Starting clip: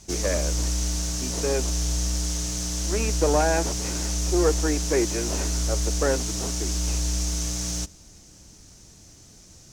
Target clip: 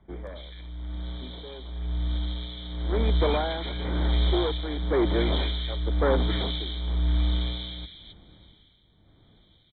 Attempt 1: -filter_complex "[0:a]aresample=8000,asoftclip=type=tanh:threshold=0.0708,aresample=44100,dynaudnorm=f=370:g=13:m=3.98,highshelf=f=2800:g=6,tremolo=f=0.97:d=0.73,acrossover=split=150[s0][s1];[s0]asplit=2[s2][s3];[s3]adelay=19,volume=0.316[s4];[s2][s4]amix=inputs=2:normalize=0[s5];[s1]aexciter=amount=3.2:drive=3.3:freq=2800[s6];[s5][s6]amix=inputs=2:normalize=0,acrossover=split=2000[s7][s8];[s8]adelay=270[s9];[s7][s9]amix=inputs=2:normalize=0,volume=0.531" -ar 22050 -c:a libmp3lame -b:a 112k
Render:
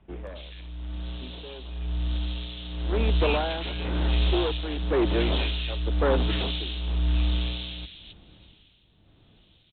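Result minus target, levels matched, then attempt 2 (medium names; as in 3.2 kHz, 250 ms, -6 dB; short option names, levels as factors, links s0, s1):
2 kHz band +2.5 dB
-filter_complex "[0:a]aresample=8000,asoftclip=type=tanh:threshold=0.0708,aresample=44100,dynaudnorm=f=370:g=13:m=3.98,asuperstop=centerf=2700:order=20:qfactor=4.3,highshelf=f=2800:g=6,tremolo=f=0.97:d=0.73,acrossover=split=150[s0][s1];[s0]asplit=2[s2][s3];[s3]adelay=19,volume=0.316[s4];[s2][s4]amix=inputs=2:normalize=0[s5];[s1]aexciter=amount=3.2:drive=3.3:freq=2800[s6];[s5][s6]amix=inputs=2:normalize=0,acrossover=split=2000[s7][s8];[s8]adelay=270[s9];[s7][s9]amix=inputs=2:normalize=0,volume=0.531" -ar 22050 -c:a libmp3lame -b:a 112k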